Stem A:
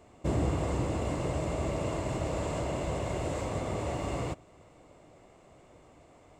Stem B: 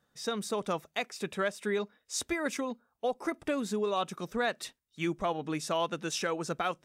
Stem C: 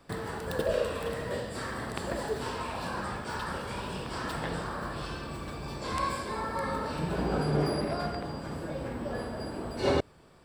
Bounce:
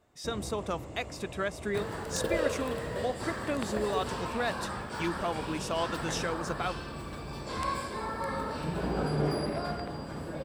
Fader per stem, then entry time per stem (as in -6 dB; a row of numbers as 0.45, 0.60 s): -12.0, -1.5, -1.5 dB; 0.00, 0.00, 1.65 s